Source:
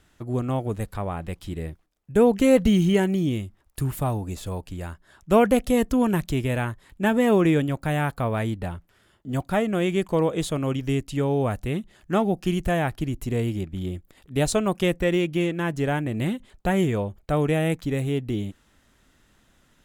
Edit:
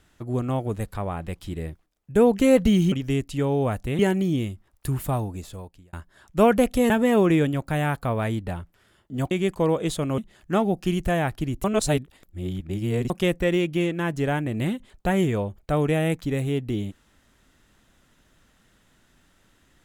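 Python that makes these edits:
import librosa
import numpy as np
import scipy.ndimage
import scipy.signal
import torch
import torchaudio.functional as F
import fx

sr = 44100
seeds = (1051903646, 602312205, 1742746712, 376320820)

y = fx.edit(x, sr, fx.fade_out_span(start_s=4.08, length_s=0.78),
    fx.cut(start_s=5.83, length_s=1.22),
    fx.cut(start_s=9.46, length_s=0.38),
    fx.move(start_s=10.71, length_s=1.07, to_s=2.92),
    fx.reverse_span(start_s=13.24, length_s=1.46), tone=tone)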